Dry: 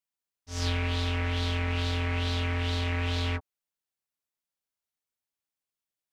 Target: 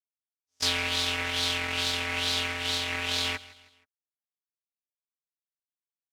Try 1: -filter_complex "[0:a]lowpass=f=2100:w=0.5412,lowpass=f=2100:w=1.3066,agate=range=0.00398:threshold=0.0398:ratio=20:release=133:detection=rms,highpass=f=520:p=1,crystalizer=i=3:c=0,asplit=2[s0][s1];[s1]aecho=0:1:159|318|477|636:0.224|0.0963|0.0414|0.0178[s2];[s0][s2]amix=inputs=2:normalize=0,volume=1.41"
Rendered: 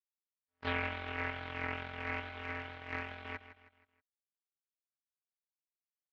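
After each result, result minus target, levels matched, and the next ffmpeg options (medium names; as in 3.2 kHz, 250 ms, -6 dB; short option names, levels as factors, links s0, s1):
echo-to-direct +6.5 dB; 2 kHz band +4.0 dB
-filter_complex "[0:a]lowpass=f=2100:w=0.5412,lowpass=f=2100:w=1.3066,agate=range=0.00398:threshold=0.0398:ratio=20:release=133:detection=rms,highpass=f=520:p=1,crystalizer=i=3:c=0,asplit=2[s0][s1];[s1]aecho=0:1:159|318|477:0.106|0.0455|0.0196[s2];[s0][s2]amix=inputs=2:normalize=0,volume=1.41"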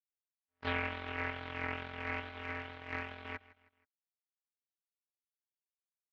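2 kHz band +4.0 dB
-filter_complex "[0:a]agate=range=0.00398:threshold=0.0398:ratio=20:release=133:detection=rms,highpass=f=520:p=1,crystalizer=i=3:c=0,asplit=2[s0][s1];[s1]aecho=0:1:159|318|477:0.106|0.0455|0.0196[s2];[s0][s2]amix=inputs=2:normalize=0,volume=1.41"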